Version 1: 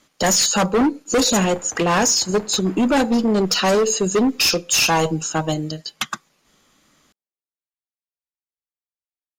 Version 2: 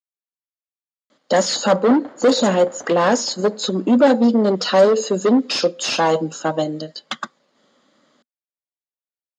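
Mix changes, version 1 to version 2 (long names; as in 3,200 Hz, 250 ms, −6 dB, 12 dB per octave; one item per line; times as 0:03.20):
speech: entry +1.10 s
master: add loudspeaker in its box 210–6,200 Hz, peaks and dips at 240 Hz +6 dB, 560 Hz +9 dB, 2,500 Hz −9 dB, 5,800 Hz −9 dB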